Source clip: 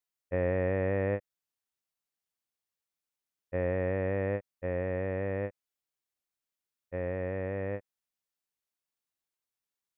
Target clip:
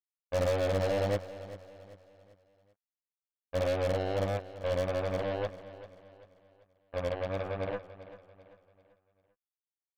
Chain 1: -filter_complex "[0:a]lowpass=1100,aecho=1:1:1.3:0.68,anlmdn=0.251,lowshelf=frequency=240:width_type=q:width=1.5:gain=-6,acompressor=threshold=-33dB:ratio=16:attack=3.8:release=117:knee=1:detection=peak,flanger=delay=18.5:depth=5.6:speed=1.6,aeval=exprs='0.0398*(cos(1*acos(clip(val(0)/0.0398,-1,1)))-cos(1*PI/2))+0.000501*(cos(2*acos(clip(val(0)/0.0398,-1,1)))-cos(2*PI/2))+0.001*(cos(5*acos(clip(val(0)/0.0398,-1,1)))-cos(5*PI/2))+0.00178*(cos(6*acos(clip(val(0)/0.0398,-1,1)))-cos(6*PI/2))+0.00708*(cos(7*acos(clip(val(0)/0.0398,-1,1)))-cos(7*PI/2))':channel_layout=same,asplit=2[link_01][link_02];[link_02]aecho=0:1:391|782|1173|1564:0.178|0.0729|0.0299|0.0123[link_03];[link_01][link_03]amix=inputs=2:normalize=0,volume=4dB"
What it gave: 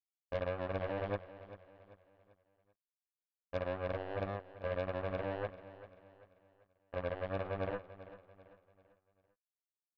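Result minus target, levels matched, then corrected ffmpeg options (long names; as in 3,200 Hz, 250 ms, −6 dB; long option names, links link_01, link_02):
downward compressor: peak gain reduction +9 dB
-filter_complex "[0:a]lowpass=1100,aecho=1:1:1.3:0.68,anlmdn=0.251,lowshelf=frequency=240:width_type=q:width=1.5:gain=-6,flanger=delay=18.5:depth=5.6:speed=1.6,aeval=exprs='0.0398*(cos(1*acos(clip(val(0)/0.0398,-1,1)))-cos(1*PI/2))+0.000501*(cos(2*acos(clip(val(0)/0.0398,-1,1)))-cos(2*PI/2))+0.001*(cos(5*acos(clip(val(0)/0.0398,-1,1)))-cos(5*PI/2))+0.00178*(cos(6*acos(clip(val(0)/0.0398,-1,1)))-cos(6*PI/2))+0.00708*(cos(7*acos(clip(val(0)/0.0398,-1,1)))-cos(7*PI/2))':channel_layout=same,asplit=2[link_01][link_02];[link_02]aecho=0:1:391|782|1173|1564:0.178|0.0729|0.0299|0.0123[link_03];[link_01][link_03]amix=inputs=2:normalize=0,volume=4dB"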